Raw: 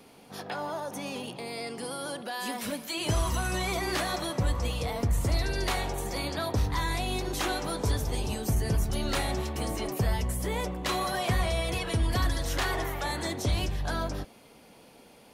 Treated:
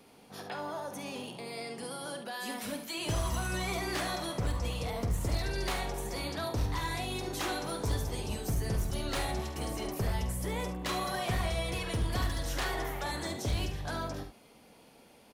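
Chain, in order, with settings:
wavefolder on the positive side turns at −22.5 dBFS
on a send: ambience of single reflections 48 ms −10.5 dB, 71 ms −10.5 dB
on the sum: level −4.5 dB

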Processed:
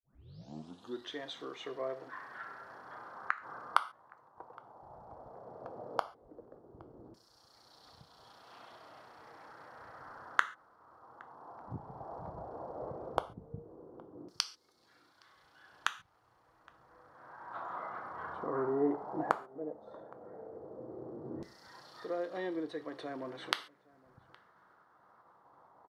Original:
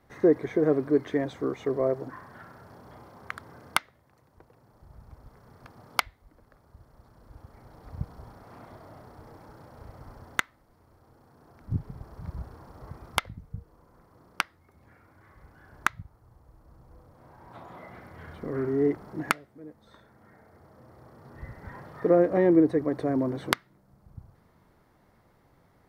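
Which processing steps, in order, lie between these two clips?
turntable start at the beginning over 1.11 s
downward expander −58 dBFS
parametric band 2,200 Hz −12 dB 0.78 octaves
in parallel at 0 dB: downward compressor, threshold −38 dBFS, peak gain reduction 21 dB
on the sum: auto-filter band-pass saw down 0.14 Hz 330–5,100 Hz
gate with flip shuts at −19 dBFS, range −24 dB
slap from a distant wall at 140 metres, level −24 dB
reverb whose tail is shaped and stops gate 160 ms falling, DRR 10 dB
level +7.5 dB

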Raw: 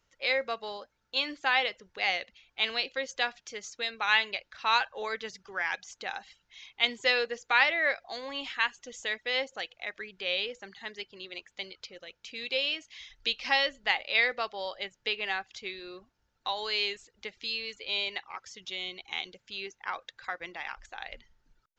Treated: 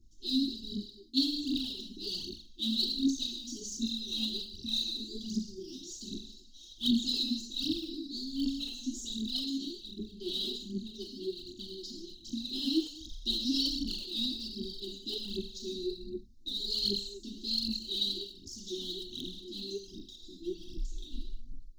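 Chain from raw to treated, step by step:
linear-phase brick-wall band-stop 400–2,600 Hz
low-shelf EQ 75 Hz +12 dB
reverb whose tail is shaped and stops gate 300 ms falling, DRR −4.5 dB
phase shifter 1.3 Hz, delay 4 ms, feedback 73%
drawn EQ curve 150 Hz 0 dB, 240 Hz +11 dB, 2,600 Hz −28 dB, 3,900 Hz −2 dB
level −3.5 dB

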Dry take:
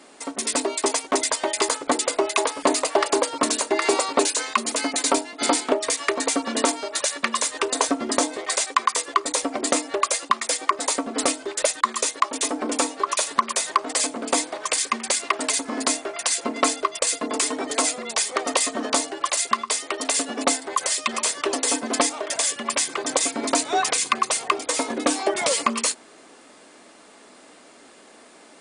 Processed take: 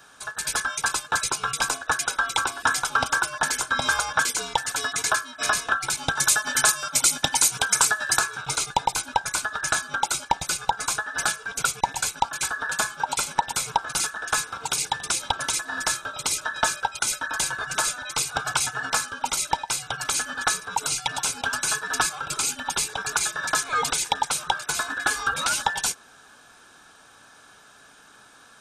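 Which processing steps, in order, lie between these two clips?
frequency inversion band by band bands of 2,000 Hz
0:06.15–0:08.19: high-shelf EQ 4,600 Hz +11.5 dB
level −2.5 dB

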